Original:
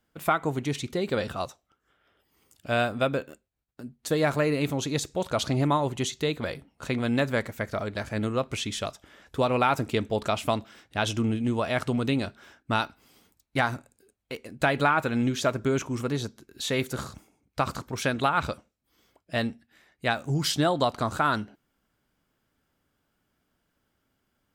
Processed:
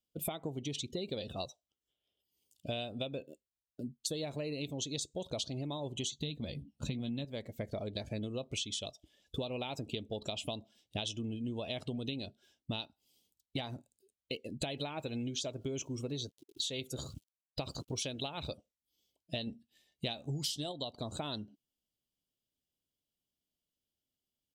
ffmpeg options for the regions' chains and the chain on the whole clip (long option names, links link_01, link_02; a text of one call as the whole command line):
ffmpeg -i in.wav -filter_complex "[0:a]asettb=1/sr,asplit=3[link_01][link_02][link_03];[link_01]atrim=end=6.114[link_04];[link_02]atrim=start=6.11:end=7.25,asetpts=PTS-STARTPTS,afade=type=in:duration=0.004:curve=qsin,afade=type=out:start_time=1.136:duration=0.004:curve=qsin,lowshelf=frequency=300:width_type=q:width=1.5:gain=6.5,asplit=2[link_05][link_06];[link_06]adelay=14,volume=-11dB[link_07];[link_05][link_07]amix=inputs=2:normalize=0,atrim=end_sample=50274[link_08];[link_03]atrim=start=7.246[link_09];[link_04][link_08]acrossfade=duration=0.004:curve1=hsin:curve2=qsin[link_10];[link_10][link_09]acrossfade=duration=0.004:curve1=qsin:curve2=hsin,asettb=1/sr,asplit=3[link_11][link_12][link_13];[link_11]atrim=end=14.774[link_14];[link_12]atrim=start=14.77:end=18.52,asetpts=PTS-STARTPTS,afade=type=in:duration=0.004:curve=qsin,afade=type=out:start_time=3.746:duration=0.004:curve=qsin,bandreject=frequency=210:width=5.2,aeval=exprs='val(0)+0.00141*sin(2*PI*1400*n/s)':channel_layout=same,aeval=exprs='val(0)*gte(abs(val(0)),0.00376)':channel_layout=same[link_15];[link_13]atrim=start=18.516[link_16];[link_14][link_15]acrossfade=duration=0.004:curve1=hsin:curve2=qsin[link_17];[link_17][link_16]acrossfade=duration=0.004:curve1=qsin:curve2=hsin,asettb=1/sr,asplit=3[link_18][link_19][link_20];[link_18]atrim=end=19.474[link_21];[link_19]atrim=start=19.47:end=20.72,asetpts=PTS-STARTPTS,afade=type=in:duration=0.004:curve=qsin,afade=type=out:start_time=1.246:duration=0.004:curve=qsin,acontrast=35,asplit=2[link_22][link_23];[link_23]adelay=14,volume=-12.5dB[link_24];[link_22][link_24]amix=inputs=2:normalize=0,atrim=end_sample=55125[link_25];[link_20]atrim=start=20.716[link_26];[link_21][link_25]acrossfade=duration=0.004:curve1=hsin:curve2=qsin[link_27];[link_27][link_26]acrossfade=duration=0.004:curve1=qsin:curve2=hsin,afftdn=noise_reduction=21:noise_floor=-41,firequalizer=gain_entry='entry(610,0);entry(1400,-18);entry(3000,10)':delay=0.05:min_phase=1,acompressor=threshold=-36dB:ratio=12,volume=1dB" out.wav